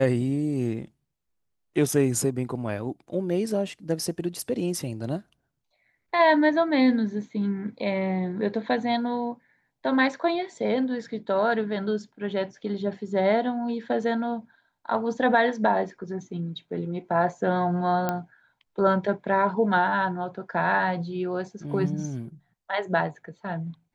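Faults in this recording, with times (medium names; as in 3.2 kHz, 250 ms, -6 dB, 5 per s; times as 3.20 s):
18.09 s: pop -12 dBFS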